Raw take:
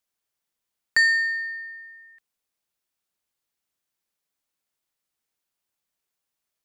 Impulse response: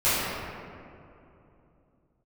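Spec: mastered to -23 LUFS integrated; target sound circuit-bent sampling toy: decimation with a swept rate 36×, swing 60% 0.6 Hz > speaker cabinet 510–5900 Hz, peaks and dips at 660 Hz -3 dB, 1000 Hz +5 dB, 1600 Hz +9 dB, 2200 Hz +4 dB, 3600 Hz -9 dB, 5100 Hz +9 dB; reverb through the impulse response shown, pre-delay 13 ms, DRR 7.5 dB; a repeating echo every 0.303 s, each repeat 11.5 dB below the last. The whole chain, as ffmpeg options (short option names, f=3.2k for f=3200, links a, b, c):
-filter_complex "[0:a]aecho=1:1:303|606|909:0.266|0.0718|0.0194,asplit=2[a][b];[1:a]atrim=start_sample=2205,adelay=13[c];[b][c]afir=irnorm=-1:irlink=0,volume=-25dB[d];[a][d]amix=inputs=2:normalize=0,acrusher=samples=36:mix=1:aa=0.000001:lfo=1:lforange=21.6:lforate=0.6,highpass=510,equalizer=f=660:t=q:w=4:g=-3,equalizer=f=1k:t=q:w=4:g=5,equalizer=f=1.6k:t=q:w=4:g=9,equalizer=f=2.2k:t=q:w=4:g=4,equalizer=f=3.6k:t=q:w=4:g=-9,equalizer=f=5.1k:t=q:w=4:g=9,lowpass=f=5.9k:w=0.5412,lowpass=f=5.9k:w=1.3066,volume=5.5dB"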